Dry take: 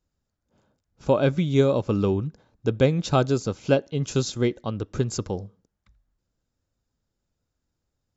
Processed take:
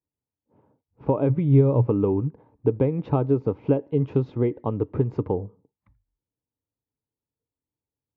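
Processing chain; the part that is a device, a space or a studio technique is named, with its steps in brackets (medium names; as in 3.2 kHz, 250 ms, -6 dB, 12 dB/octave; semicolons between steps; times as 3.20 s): bass amplifier (compression 5:1, threshold -24 dBFS, peak gain reduction 10 dB; cabinet simulation 62–2100 Hz, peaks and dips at 90 Hz +4 dB, 130 Hz +7 dB, 290 Hz +9 dB, 440 Hz +9 dB, 920 Hz +9 dB, 1.5 kHz -9 dB); spectral noise reduction 16 dB; 1.29–1.87 s: peaking EQ 120 Hz +13 dB 0.36 oct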